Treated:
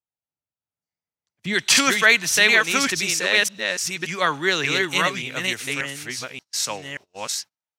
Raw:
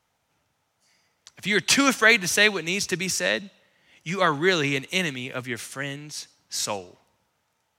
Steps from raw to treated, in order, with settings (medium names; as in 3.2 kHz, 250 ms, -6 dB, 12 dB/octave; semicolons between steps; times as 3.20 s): chunks repeated in reverse 581 ms, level -2 dB; gate -38 dBFS, range -28 dB; tilt shelf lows +3.5 dB, about 710 Hz, from 1.53 s lows -4 dB; trim -1 dB